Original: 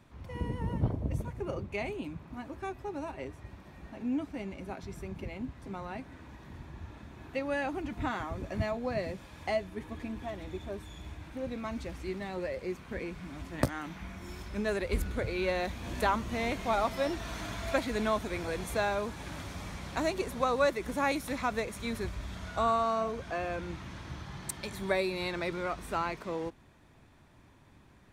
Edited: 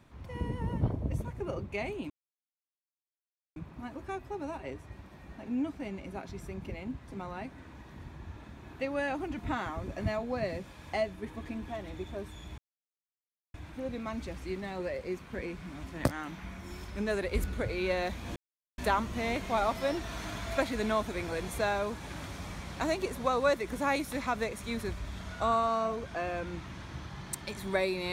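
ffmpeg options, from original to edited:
ffmpeg -i in.wav -filter_complex "[0:a]asplit=4[link_01][link_02][link_03][link_04];[link_01]atrim=end=2.1,asetpts=PTS-STARTPTS,afade=type=out:start_time=2.096:duration=0.004:curve=hsin,apad=pad_dur=1.46[link_05];[link_02]atrim=start=2.1:end=11.12,asetpts=PTS-STARTPTS,afade=type=in:duration=0.004:curve=hsin,afade=type=out:start_time=9.016:duration=0.004:curve=hsin,apad=pad_dur=0.96[link_06];[link_03]atrim=start=11.12:end=15.94,asetpts=PTS-STARTPTS,afade=type=in:duration=0.004:curve=hsin,afade=type=out:start_time=4.816:duration=0.004:curve=hsin,apad=pad_dur=0.42[link_07];[link_04]atrim=start=15.94,asetpts=PTS-STARTPTS,afade=type=in:duration=0.004:curve=hsin[link_08];[link_05][link_06][link_07][link_08]concat=n=4:v=0:a=1" out.wav

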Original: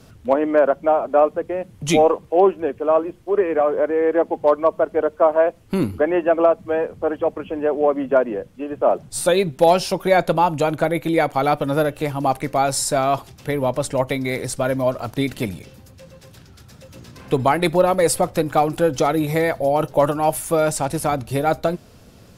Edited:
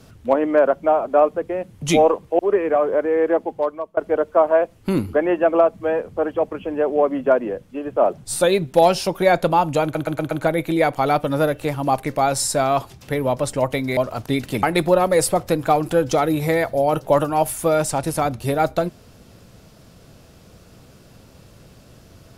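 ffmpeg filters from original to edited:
ffmpeg -i in.wav -filter_complex "[0:a]asplit=9[link_01][link_02][link_03][link_04][link_05][link_06][link_07][link_08][link_09];[link_01]atrim=end=2.392[link_10];[link_02]atrim=start=3.238:end=4.82,asetpts=PTS-STARTPTS,afade=type=out:start_time=0.892:duration=0.69:silence=0.0668344[link_11];[link_03]atrim=start=4.82:end=10.802,asetpts=PTS-STARTPTS,afade=type=in:duration=0.004:curve=hsin:silence=0.0668344[link_12];[link_04]atrim=start=10.678:end=10.802[link_13];[link_05]atrim=start=10.678:end=10.802[link_14];[link_06]atrim=start=10.678:end=10.802[link_15];[link_07]atrim=start=10.678:end=14.342[link_16];[link_08]atrim=start=14.848:end=15.512[link_17];[link_09]atrim=start=17.498[link_18];[link_11][link_12]concat=n=2:v=0:a=1[link_19];[link_10][link_19]acrossfade=duration=0.004:curve1=hsin:curve2=hsin[link_20];[link_20][link_13]acrossfade=duration=0.004:curve1=hsin:curve2=hsin[link_21];[link_21][link_14]acrossfade=duration=0.004:curve1=hsin:curve2=hsin[link_22];[link_22][link_15]acrossfade=duration=0.004:curve1=hsin:curve2=hsin[link_23];[link_23][link_16]acrossfade=duration=0.004:curve1=hsin:curve2=hsin[link_24];[link_24][link_17]acrossfade=duration=0.004:curve1=hsin:curve2=hsin[link_25];[link_25][link_18]acrossfade=duration=0.004:curve1=hsin:curve2=hsin" out.wav

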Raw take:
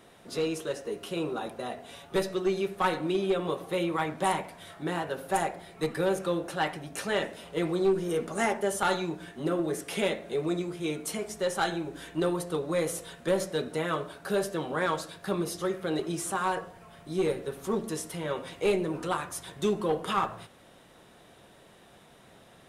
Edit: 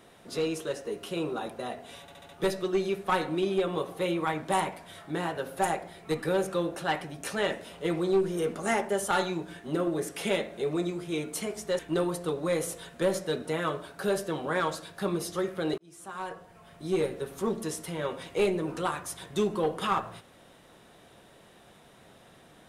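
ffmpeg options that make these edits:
ffmpeg -i in.wav -filter_complex "[0:a]asplit=7[link_01][link_02][link_03][link_04][link_05][link_06][link_07];[link_01]atrim=end=2.082[link_08];[link_02]atrim=start=2.008:end=2.082[link_09];[link_03]atrim=start=2.008:end=2.082[link_10];[link_04]atrim=start=2.008:end=2.082[link_11];[link_05]atrim=start=2.008:end=11.512[link_12];[link_06]atrim=start=12.048:end=16.04,asetpts=PTS-STARTPTS,afade=type=out:start_time=3.988:duration=0.004:curve=hsin[link_13];[link_07]atrim=start=16.04,asetpts=PTS-STARTPTS,afade=type=in:duration=1.13[link_14];[link_08][link_09]acrossfade=duration=0.004:curve1=hsin:curve2=hsin[link_15];[link_15][link_10]acrossfade=duration=0.004:curve1=hsin:curve2=hsin[link_16];[link_16][link_11]acrossfade=duration=0.004:curve1=hsin:curve2=hsin[link_17];[link_17][link_12]acrossfade=duration=0.004:curve1=hsin:curve2=hsin[link_18];[link_13][link_14]concat=n=2:v=0:a=1[link_19];[link_18][link_19]acrossfade=duration=0.004:curve1=hsin:curve2=hsin" out.wav

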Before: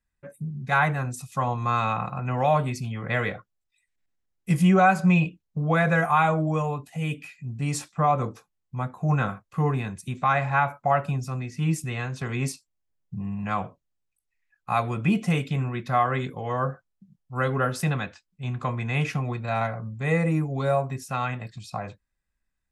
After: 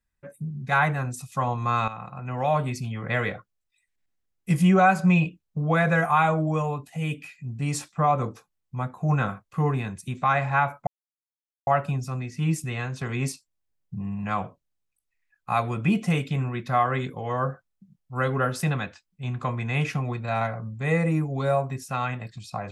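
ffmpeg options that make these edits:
ffmpeg -i in.wav -filter_complex "[0:a]asplit=3[link_01][link_02][link_03];[link_01]atrim=end=1.88,asetpts=PTS-STARTPTS,afade=type=out:start_time=1.876:duration=0.004:curve=hsin:silence=0.237137[link_04];[link_02]atrim=start=1.88:end=10.87,asetpts=PTS-STARTPTS,afade=type=in:duration=0.87:silence=0.237137,afade=type=out:start_time=8.986:duration=0.004:curve=hsin,apad=pad_dur=0.8[link_05];[link_03]atrim=start=10.87,asetpts=PTS-STARTPTS,afade=type=in:duration=0.004:curve=hsin[link_06];[link_04][link_05][link_06]concat=n=3:v=0:a=1" out.wav

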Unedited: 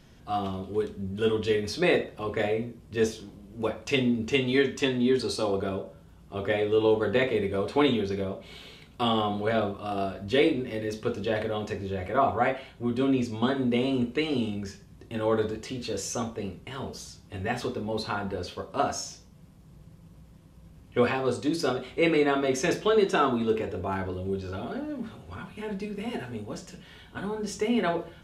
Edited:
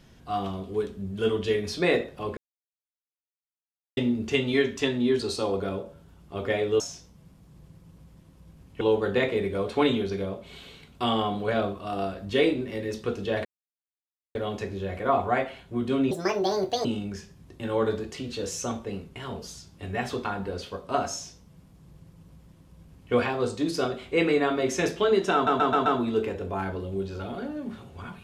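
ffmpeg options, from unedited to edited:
ffmpeg -i in.wav -filter_complex "[0:a]asplit=13[link_01][link_02][link_03][link_04][link_05][link_06][link_07][link_08][link_09][link_10][link_11][link_12][link_13];[link_01]atrim=end=2.37,asetpts=PTS-STARTPTS,afade=type=out:start_time=2.366:duration=0.004:curve=hsin[link_14];[link_02]atrim=start=2.37:end=3.97,asetpts=PTS-STARTPTS,volume=0[link_15];[link_03]atrim=start=3.97:end=6.802,asetpts=PTS-STARTPTS,afade=type=in:duration=0.004:curve=hsin[link_16];[link_04]atrim=start=18.968:end=20.982[link_17];[link_05]atrim=start=6.798:end=11.44,asetpts=PTS-STARTPTS,afade=type=out:start_time=4.638:duration=0.004:curve=hsin,apad=pad_dur=0.9[link_18];[link_06]atrim=start=11.44:end=13.204,asetpts=PTS-STARTPTS,afade=type=in:duration=0.004:curve=hsin[link_19];[link_07]atrim=start=13.2:end=14.36,asetpts=PTS-STARTPTS,asetrate=69237,aresample=44100,atrim=end_sample=32583,asetpts=PTS-STARTPTS[link_20];[link_08]atrim=start=14.356:end=17.762[link_21];[link_09]atrim=start=18.098:end=23.322[link_22];[link_10]atrim=start=23.188:end=23.322[link_23];[link_11]atrim=start=23.188:end=23.322[link_24];[link_12]atrim=start=23.188:end=23.322[link_25];[link_13]atrim=start=23.188[link_26];[link_14][link_15][link_16]concat=n=3:v=0:a=1[link_27];[link_27][link_17]acrossfade=duration=0.004:curve1=hsin:curve2=hsin[link_28];[link_18][link_19]concat=n=2:v=0:a=1[link_29];[link_28][link_29]acrossfade=duration=0.004:curve1=hsin:curve2=hsin[link_30];[link_30][link_20]acrossfade=duration=0.004:curve1=hsin:curve2=hsin[link_31];[link_31][link_21]acrossfade=duration=0.004:curve1=hsin:curve2=hsin[link_32];[link_32][link_22]acrossfade=duration=0.004:curve1=hsin:curve2=hsin[link_33];[link_33][link_23]acrossfade=duration=0.004:curve1=hsin:curve2=hsin[link_34];[link_34][link_24]acrossfade=duration=0.004:curve1=hsin:curve2=hsin[link_35];[link_35][link_25]acrossfade=duration=0.004:curve1=hsin:curve2=hsin[link_36];[link_36][link_26]acrossfade=duration=0.004:curve1=hsin:curve2=hsin" out.wav

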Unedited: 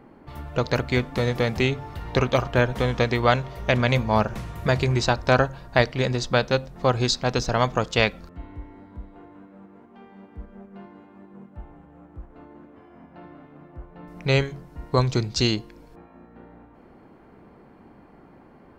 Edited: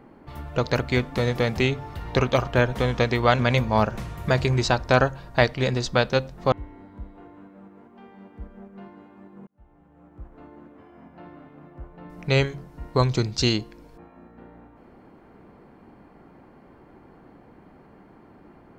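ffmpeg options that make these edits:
ffmpeg -i in.wav -filter_complex "[0:a]asplit=4[link_01][link_02][link_03][link_04];[link_01]atrim=end=3.392[link_05];[link_02]atrim=start=3.768:end=6.902[link_06];[link_03]atrim=start=8.498:end=11.45,asetpts=PTS-STARTPTS,afade=type=out:start_time=2.948:duration=0.004:curve=hsin[link_07];[link_04]atrim=start=11.45,asetpts=PTS-STARTPTS,afade=type=in:duration=0.88[link_08];[link_05][link_06]acrossfade=duration=0.004:curve1=hsin:curve2=hsin[link_09];[link_07][link_08]concat=n=2:v=0:a=1[link_10];[link_09][link_10]acrossfade=duration=0.004:curve1=hsin:curve2=hsin" out.wav

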